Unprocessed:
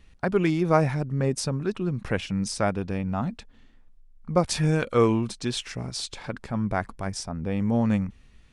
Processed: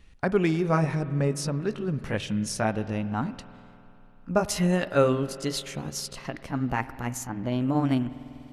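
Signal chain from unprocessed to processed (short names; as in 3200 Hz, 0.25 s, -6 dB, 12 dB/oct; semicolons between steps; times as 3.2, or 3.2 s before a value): gliding pitch shift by +4.5 st starting unshifted; spring tank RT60 3.3 s, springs 49 ms, chirp 70 ms, DRR 14 dB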